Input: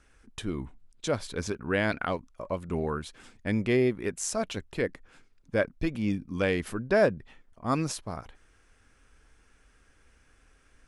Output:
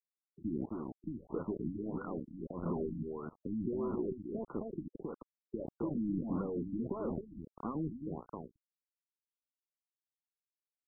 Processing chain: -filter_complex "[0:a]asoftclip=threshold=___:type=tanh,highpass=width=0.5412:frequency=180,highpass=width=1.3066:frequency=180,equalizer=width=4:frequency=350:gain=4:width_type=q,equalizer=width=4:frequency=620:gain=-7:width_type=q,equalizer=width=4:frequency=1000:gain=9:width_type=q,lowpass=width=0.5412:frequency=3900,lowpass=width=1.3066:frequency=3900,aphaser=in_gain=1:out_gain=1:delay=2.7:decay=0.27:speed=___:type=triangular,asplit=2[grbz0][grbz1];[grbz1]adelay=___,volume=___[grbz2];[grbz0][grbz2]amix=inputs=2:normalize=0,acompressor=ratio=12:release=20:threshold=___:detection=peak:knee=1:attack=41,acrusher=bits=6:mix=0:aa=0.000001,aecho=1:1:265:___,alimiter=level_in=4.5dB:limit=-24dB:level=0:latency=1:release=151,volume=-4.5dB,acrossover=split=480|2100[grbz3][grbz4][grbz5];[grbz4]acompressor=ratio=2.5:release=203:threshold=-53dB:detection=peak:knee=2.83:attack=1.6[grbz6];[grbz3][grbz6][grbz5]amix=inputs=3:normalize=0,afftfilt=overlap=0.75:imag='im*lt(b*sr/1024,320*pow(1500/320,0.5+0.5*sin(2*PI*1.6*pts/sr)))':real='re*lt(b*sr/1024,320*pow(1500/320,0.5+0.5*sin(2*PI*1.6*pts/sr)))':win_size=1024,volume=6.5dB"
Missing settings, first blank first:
-27.5dB, 1.9, 13, -12dB, -45dB, 0.501